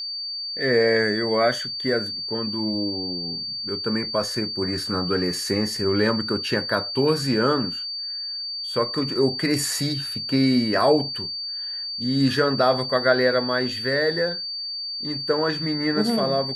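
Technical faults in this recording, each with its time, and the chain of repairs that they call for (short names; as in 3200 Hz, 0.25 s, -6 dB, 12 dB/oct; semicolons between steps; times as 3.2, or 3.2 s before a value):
tone 4600 Hz -28 dBFS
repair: notch 4600 Hz, Q 30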